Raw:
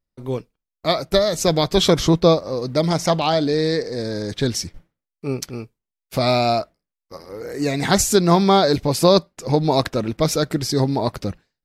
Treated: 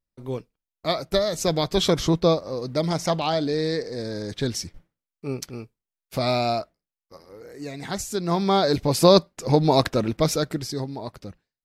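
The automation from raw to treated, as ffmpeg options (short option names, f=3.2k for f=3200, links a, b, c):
-af "volume=7.5dB,afade=t=out:st=6.45:d=1.14:silence=0.398107,afade=t=in:st=8.12:d=0.98:silence=0.237137,afade=t=out:st=10.03:d=0.84:silence=0.251189"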